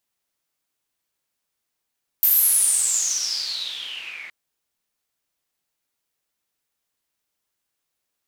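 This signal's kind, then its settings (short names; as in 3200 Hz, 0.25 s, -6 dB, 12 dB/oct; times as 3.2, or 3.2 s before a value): swept filtered noise pink, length 2.07 s bandpass, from 14000 Hz, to 2100 Hz, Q 11, exponential, gain ramp -26 dB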